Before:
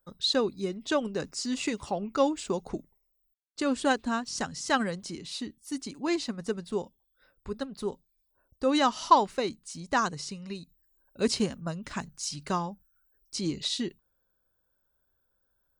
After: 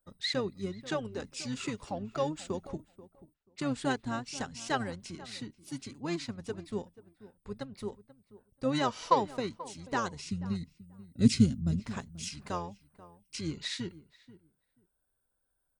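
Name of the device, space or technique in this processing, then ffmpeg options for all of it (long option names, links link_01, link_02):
octave pedal: -filter_complex "[0:a]asettb=1/sr,asplit=3[link_01][link_02][link_03];[link_01]atrim=end=10.304[link_04];[link_02]atrim=start=10.3:end=11.8,asetpts=PTS-STARTPTS,afade=type=in:duration=0.004:curve=qsin,afade=type=out:start_time=1.496:duration=0.004:curve=qsin,equalizer=frequency=125:width_type=o:width=1:gain=12,equalizer=frequency=250:width_type=o:width=1:gain=12,equalizer=frequency=500:width_type=o:width=1:gain=-6,equalizer=frequency=1000:width_type=o:width=1:gain=-12,equalizer=frequency=2000:width_type=o:width=1:gain=-6,equalizer=frequency=4000:width_type=o:width=1:gain=3,equalizer=frequency=8000:width_type=o:width=1:gain=4[link_05];[link_03]atrim=start=11.796[link_06];[link_04][link_05]acrossfade=duration=0.004:curve1=hsin:curve2=qsin[link_07];[link_07][link_06]acrossfade=duration=0.004:curve1=qsin:curve2=hsin,asplit=2[link_08][link_09];[link_09]asetrate=22050,aresample=44100,atempo=2,volume=-6dB[link_10];[link_08][link_10]amix=inputs=2:normalize=0,asplit=2[link_11][link_12];[link_12]adelay=485,lowpass=frequency=1300:poles=1,volume=-17dB,asplit=2[link_13][link_14];[link_14]adelay=485,lowpass=frequency=1300:poles=1,volume=0.17[link_15];[link_11][link_13][link_15]amix=inputs=3:normalize=0,volume=-6.5dB"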